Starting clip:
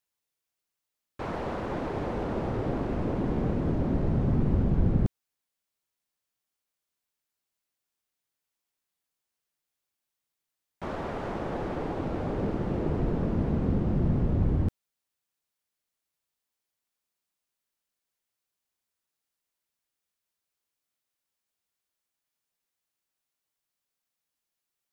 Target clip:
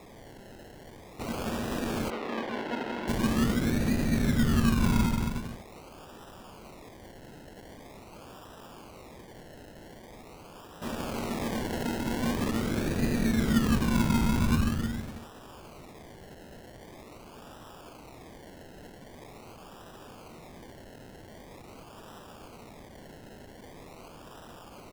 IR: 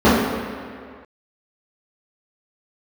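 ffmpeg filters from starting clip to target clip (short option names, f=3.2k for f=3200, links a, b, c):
-filter_complex "[0:a]aeval=exprs='val(0)+0.5*0.0126*sgn(val(0))':c=same,equalizer=f=230:w=7.7:g=13,asplit=2[a][b];[b]aecho=0:1:180|315|416.2|492.2|549.1:0.631|0.398|0.251|0.158|0.1[c];[a][c]amix=inputs=2:normalize=0,acrusher=samples=29:mix=1:aa=0.000001:lfo=1:lforange=17.4:lforate=0.44,asettb=1/sr,asplit=3[d][e][f];[d]atrim=end=2.104[g];[e]atrim=start=2.1:end=3.08,asetpts=PTS-STARTPTS,afade=t=in:d=0.004:c=qsin,afade=t=out:st=0.976:d=0.004:c=qsin,acrossover=split=260 4000:gain=0.0708 1 0.0891[h][i][j];[h][i][j]amix=inputs=3:normalize=0[k];[f]atrim=start=3.076[l];[g][k]acrossfade=d=0.004:c1=hsin:c2=qsin[m];[m][l]acrossfade=d=0.004:c1=qsin:c2=hsin,volume=-5dB"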